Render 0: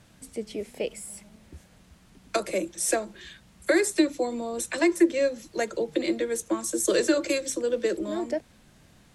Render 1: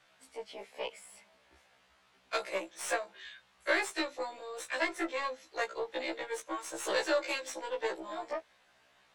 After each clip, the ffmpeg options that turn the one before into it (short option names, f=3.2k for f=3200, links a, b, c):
-filter_complex "[0:a]aeval=exprs='0.376*(cos(1*acos(clip(val(0)/0.376,-1,1)))-cos(1*PI/2))+0.0237*(cos(4*acos(clip(val(0)/0.376,-1,1)))-cos(4*PI/2))+0.0211*(cos(8*acos(clip(val(0)/0.376,-1,1)))-cos(8*PI/2))':c=same,acrossover=split=530 4500:gain=0.0631 1 0.224[a][b][c];[a][b][c]amix=inputs=3:normalize=0,afftfilt=real='re*1.73*eq(mod(b,3),0)':imag='im*1.73*eq(mod(b,3),0)':win_size=2048:overlap=0.75"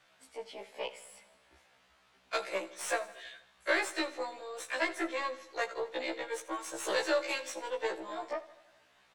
-af "aecho=1:1:81|162|243|324|405|486:0.141|0.0848|0.0509|0.0305|0.0183|0.011"